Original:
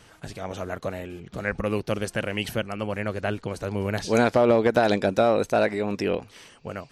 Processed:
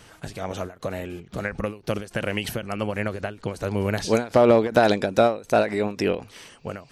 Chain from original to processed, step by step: treble shelf 11 kHz +4 dB; endings held to a fixed fall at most 170 dB/s; trim +3 dB

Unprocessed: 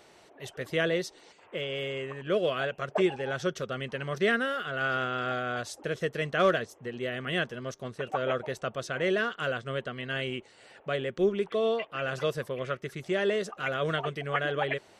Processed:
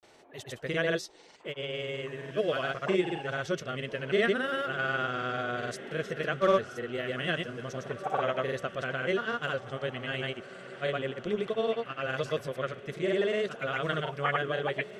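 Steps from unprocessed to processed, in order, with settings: granulator, pitch spread up and down by 0 st; echo that smears into a reverb 1702 ms, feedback 46%, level -15 dB

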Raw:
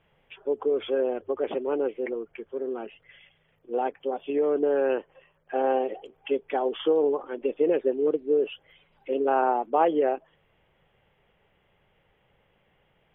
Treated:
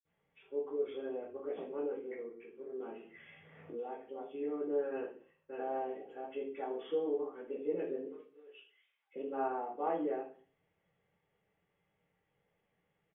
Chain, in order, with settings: 4.87–5.62 s: echo throw 570 ms, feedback 15%, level -4 dB; 8.00–9.11 s: high-pass 1.4 kHz 12 dB/octave; reverberation RT60 0.40 s, pre-delay 47 ms; 2.80–4.09 s: three bands compressed up and down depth 100%; trim -3 dB

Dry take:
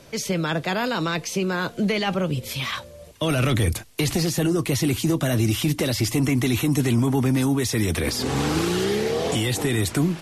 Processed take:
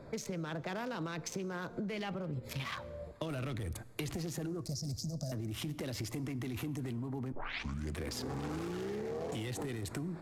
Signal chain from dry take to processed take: local Wiener filter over 15 samples; 4.61–5.32 s: FFT filter 100 Hz 0 dB, 230 Hz -5 dB, 350 Hz -24 dB, 620 Hz -1 dB, 960 Hz -21 dB, 3 kHz -25 dB, 5 kHz +14 dB, 9.4 kHz -2 dB; peak limiter -20.5 dBFS, peak gain reduction 10 dB; 7.32 s: tape start 0.66 s; compression 12:1, threshold -34 dBFS, peak gain reduction 11 dB; plate-style reverb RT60 1.9 s, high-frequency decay 0.6×, DRR 17.5 dB; trim -1.5 dB

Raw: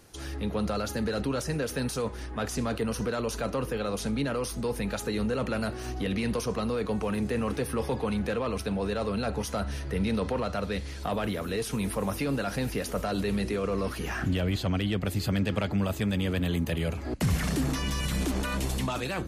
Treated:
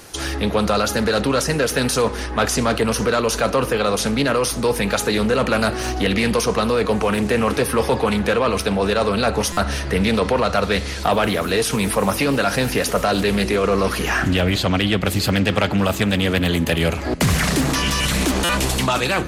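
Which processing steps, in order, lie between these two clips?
bass shelf 380 Hz -8 dB; in parallel at +0.5 dB: gain riding within 4 dB 0.5 s; on the sum: hard clipper -17 dBFS, distortion -38 dB; on a send at -18.5 dB: reverberation RT60 1.3 s, pre-delay 39 ms; on the sum: buffer glitch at 9.52/18.44 s, samples 256, times 8; loudspeaker Doppler distortion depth 0.24 ms; trim +8.5 dB

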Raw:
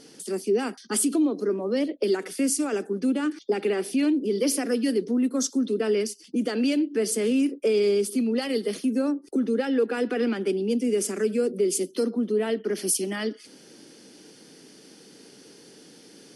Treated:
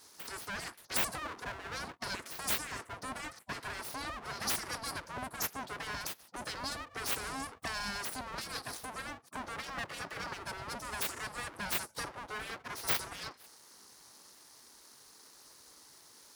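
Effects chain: Butterworth band-stop 2.6 kHz, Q 0.96; full-wave rectifier; spectral gate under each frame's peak -25 dB weak

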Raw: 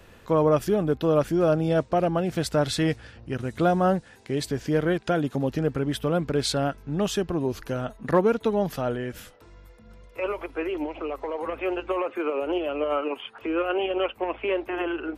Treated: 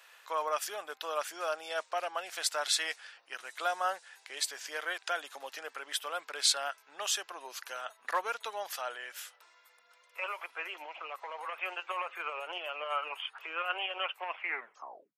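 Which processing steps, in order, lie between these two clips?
tape stop on the ending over 0.82 s; dynamic bell 7.6 kHz, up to +4 dB, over -50 dBFS, Q 0.98; Bessel high-pass 1.2 kHz, order 4

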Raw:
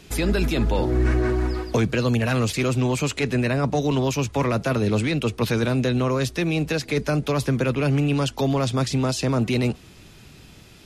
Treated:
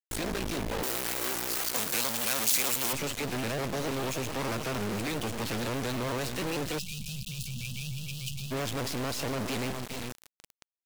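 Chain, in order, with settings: low-pass 11 kHz 24 dB/octave; delay 411 ms -14.5 dB; half-wave rectifier; bass shelf 120 Hz -6.5 dB; feedback delay 308 ms, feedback 28%, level -23 dB; companded quantiser 2-bit; 0.83–2.93 s: RIAA curve recording; 6.79–8.52 s: time-frequency box 220–2400 Hz -28 dB; vibrato with a chosen wave saw up 6.7 Hz, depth 160 cents; trim -5 dB

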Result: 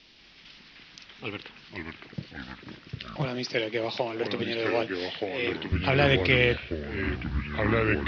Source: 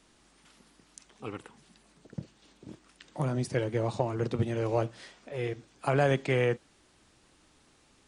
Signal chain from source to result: steep low-pass 5.4 kHz 72 dB/octave; resonant high shelf 1.8 kHz +9.5 dB, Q 1.5; ever faster or slower copies 185 ms, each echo -4 st, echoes 3; 3.25–5.72 s: high-pass 250 Hz 12 dB/octave; trim +2 dB

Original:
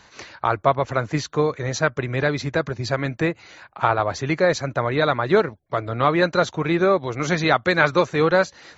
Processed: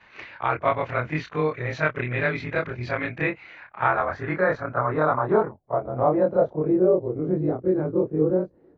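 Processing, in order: short-time spectra conjugated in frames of 65 ms; low-pass sweep 2.4 kHz -> 370 Hz, 3.42–7.40 s; trim -1.5 dB

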